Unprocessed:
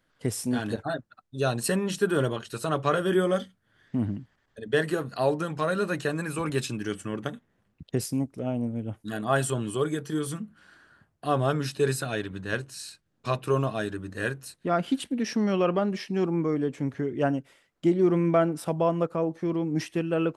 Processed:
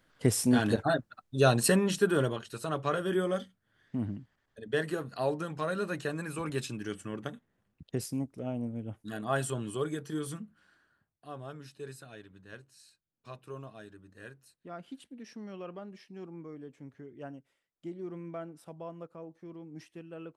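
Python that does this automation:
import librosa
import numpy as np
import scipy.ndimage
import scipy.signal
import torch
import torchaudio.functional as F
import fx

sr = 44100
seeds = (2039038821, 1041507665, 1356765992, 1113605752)

y = fx.gain(x, sr, db=fx.line((1.56, 3.0), (2.57, -6.0), (10.34, -6.0), (11.27, -18.5)))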